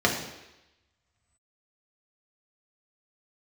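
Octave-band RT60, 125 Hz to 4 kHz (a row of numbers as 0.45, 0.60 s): 1.0, 0.90, 0.95, 0.95, 1.0, 1.0 s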